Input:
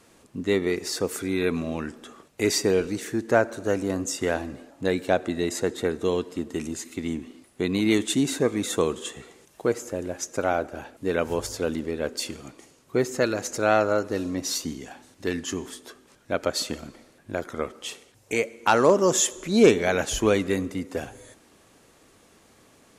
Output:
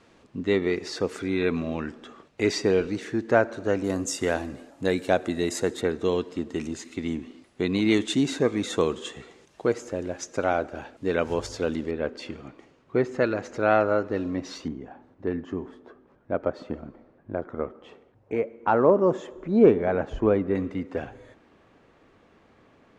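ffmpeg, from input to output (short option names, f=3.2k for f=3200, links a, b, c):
-af "asetnsamples=n=441:p=0,asendcmd='3.84 lowpass f 11000;5.81 lowpass f 5400;11.91 lowpass f 2500;14.68 lowpass f 1100;20.55 lowpass f 2400',lowpass=4.2k"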